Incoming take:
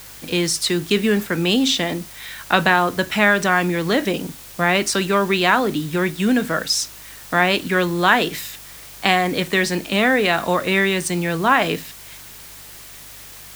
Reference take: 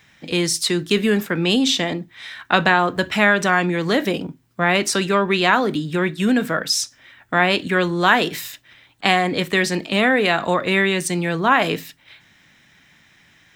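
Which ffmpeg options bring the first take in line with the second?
-af "bandreject=f=50.2:t=h:w=4,bandreject=f=100.4:t=h:w=4,bandreject=f=150.6:t=h:w=4,afftdn=nr=15:nf=-40"

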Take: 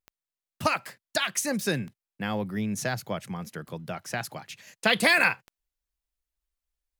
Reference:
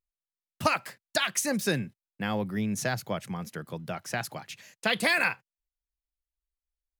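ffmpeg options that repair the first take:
-af "adeclick=t=4,asetnsamples=n=441:p=0,asendcmd='4.67 volume volume -4dB',volume=0dB"

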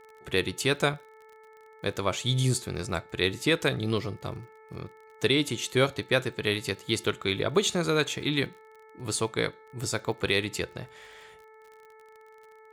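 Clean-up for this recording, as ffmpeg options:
-af "adeclick=t=4,bandreject=f=437.5:t=h:w=4,bandreject=f=875:t=h:w=4,bandreject=f=1.3125k:t=h:w=4,bandreject=f=1.75k:t=h:w=4,bandreject=f=2.1875k:t=h:w=4"

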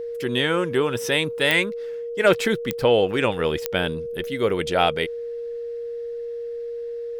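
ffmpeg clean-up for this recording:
-af "adeclick=t=4,bandreject=f=470:w=30"

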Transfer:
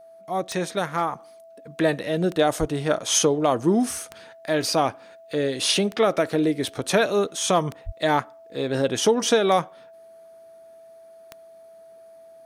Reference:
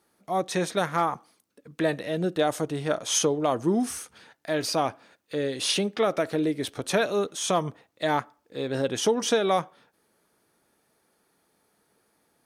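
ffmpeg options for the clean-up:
-filter_complex "[0:a]adeclick=t=4,bandreject=f=660:w=30,asplit=3[a][b][c];[a]afade=t=out:st=2.59:d=0.02[d];[b]highpass=f=140:w=0.5412,highpass=f=140:w=1.3066,afade=t=in:st=2.59:d=0.02,afade=t=out:st=2.71:d=0.02[e];[c]afade=t=in:st=2.71:d=0.02[f];[d][e][f]amix=inputs=3:normalize=0,asplit=3[g][h][i];[g]afade=t=out:st=7.85:d=0.02[j];[h]highpass=f=140:w=0.5412,highpass=f=140:w=1.3066,afade=t=in:st=7.85:d=0.02,afade=t=out:st=7.97:d=0.02[k];[i]afade=t=in:st=7.97:d=0.02[l];[j][k][l]amix=inputs=3:normalize=0,asetnsamples=n=441:p=0,asendcmd='1.19 volume volume -4dB',volume=0dB"

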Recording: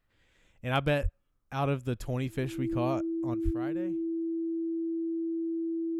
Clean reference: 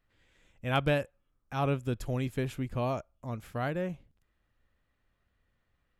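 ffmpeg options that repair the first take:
-filter_complex "[0:a]bandreject=f=330:w=30,asplit=3[a][b][c];[a]afade=t=out:st=1.02:d=0.02[d];[b]highpass=f=140:w=0.5412,highpass=f=140:w=1.3066,afade=t=in:st=1.02:d=0.02,afade=t=out:st=1.14:d=0.02[e];[c]afade=t=in:st=1.14:d=0.02[f];[d][e][f]amix=inputs=3:normalize=0,asplit=3[g][h][i];[g]afade=t=out:st=3.44:d=0.02[j];[h]highpass=f=140:w=0.5412,highpass=f=140:w=1.3066,afade=t=in:st=3.44:d=0.02,afade=t=out:st=3.56:d=0.02[k];[i]afade=t=in:st=3.56:d=0.02[l];[j][k][l]amix=inputs=3:normalize=0,asetnsamples=n=441:p=0,asendcmd='3.34 volume volume 9dB',volume=0dB"

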